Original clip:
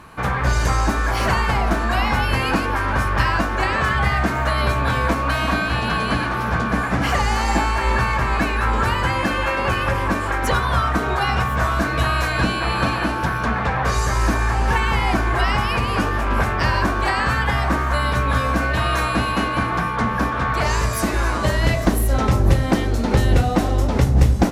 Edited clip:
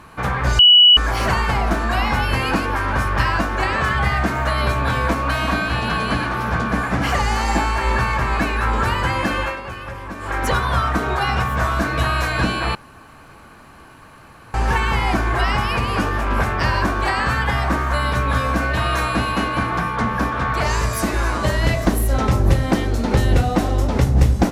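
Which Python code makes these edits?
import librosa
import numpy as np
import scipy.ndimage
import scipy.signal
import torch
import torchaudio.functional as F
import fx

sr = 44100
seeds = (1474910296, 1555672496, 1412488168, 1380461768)

y = fx.edit(x, sr, fx.bleep(start_s=0.59, length_s=0.38, hz=2940.0, db=-6.0),
    fx.fade_down_up(start_s=9.4, length_s=0.98, db=-11.0, fade_s=0.21),
    fx.room_tone_fill(start_s=12.75, length_s=1.79), tone=tone)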